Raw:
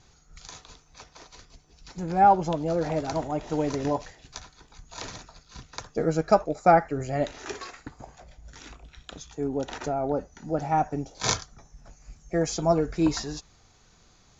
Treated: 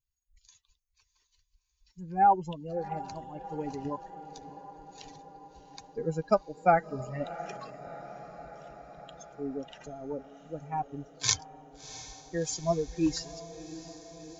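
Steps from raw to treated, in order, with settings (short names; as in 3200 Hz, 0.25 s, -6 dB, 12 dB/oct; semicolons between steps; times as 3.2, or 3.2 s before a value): per-bin expansion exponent 2; high shelf 3500 Hz +7.5 dB; on a send: diffused feedback echo 0.695 s, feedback 68%, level -15 dB; on the sum: gain -2.5 dB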